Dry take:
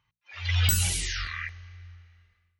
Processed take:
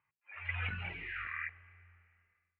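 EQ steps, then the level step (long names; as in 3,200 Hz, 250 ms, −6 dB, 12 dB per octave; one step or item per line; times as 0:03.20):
high-pass filter 380 Hz 6 dB per octave
Chebyshev low-pass filter 2,500 Hz, order 5
−3.5 dB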